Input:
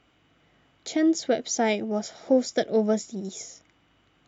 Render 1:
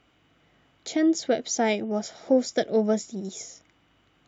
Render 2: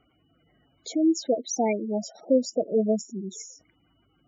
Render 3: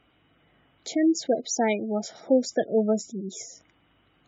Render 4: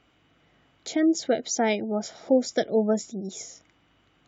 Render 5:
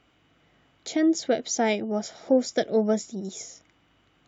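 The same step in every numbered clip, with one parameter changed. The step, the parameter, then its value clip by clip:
spectral gate, under each frame's peak: -60 dB, -10 dB, -20 dB, -35 dB, -50 dB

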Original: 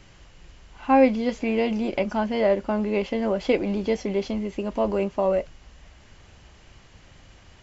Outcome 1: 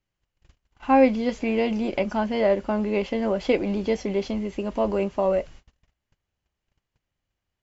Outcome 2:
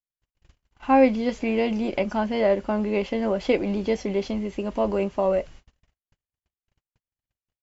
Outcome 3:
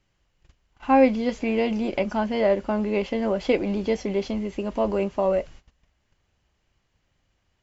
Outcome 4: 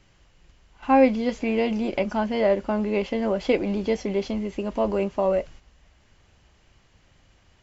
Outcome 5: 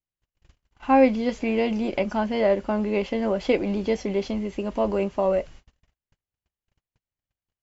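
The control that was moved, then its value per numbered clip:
gate, range: -32 dB, -58 dB, -20 dB, -8 dB, -46 dB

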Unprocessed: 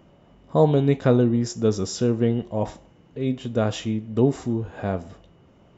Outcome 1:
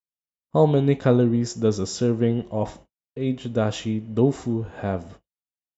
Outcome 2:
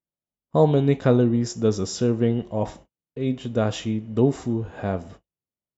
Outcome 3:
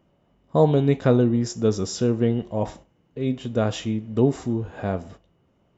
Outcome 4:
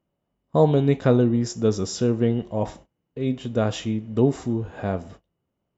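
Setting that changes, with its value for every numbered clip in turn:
gate, range: -60 dB, -44 dB, -10 dB, -24 dB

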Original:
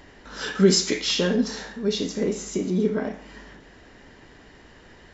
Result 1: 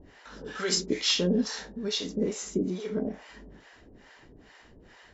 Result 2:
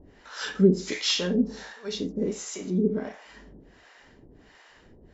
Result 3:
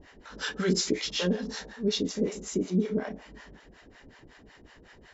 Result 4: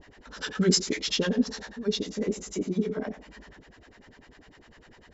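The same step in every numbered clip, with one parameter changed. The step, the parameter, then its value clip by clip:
harmonic tremolo, rate: 2.3 Hz, 1.4 Hz, 5.4 Hz, 10 Hz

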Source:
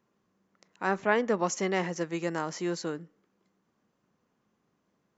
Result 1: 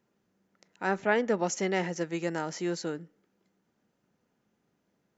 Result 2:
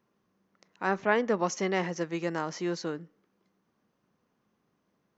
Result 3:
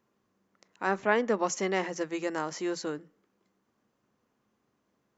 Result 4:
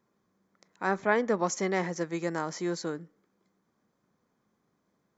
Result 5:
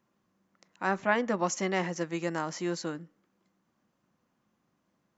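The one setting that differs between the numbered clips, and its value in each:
band-stop, frequency: 1.1 kHz, 7.2 kHz, 170 Hz, 2.8 kHz, 430 Hz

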